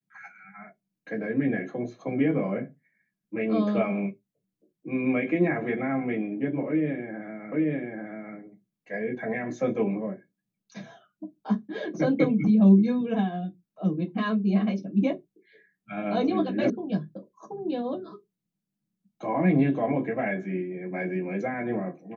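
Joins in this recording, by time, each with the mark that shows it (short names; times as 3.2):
7.52 repeat of the last 0.84 s
16.7 sound cut off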